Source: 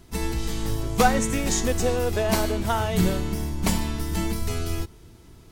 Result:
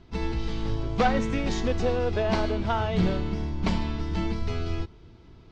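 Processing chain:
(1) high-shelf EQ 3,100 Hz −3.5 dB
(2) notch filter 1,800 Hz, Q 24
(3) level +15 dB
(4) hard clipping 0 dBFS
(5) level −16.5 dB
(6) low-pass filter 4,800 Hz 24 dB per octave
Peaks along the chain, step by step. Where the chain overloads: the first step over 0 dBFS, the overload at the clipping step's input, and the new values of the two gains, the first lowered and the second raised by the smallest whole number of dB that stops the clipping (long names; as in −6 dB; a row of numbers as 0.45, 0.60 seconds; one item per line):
−6.0, −6.0, +9.0, 0.0, −16.5, −15.5 dBFS
step 3, 9.0 dB
step 3 +6 dB, step 5 −7.5 dB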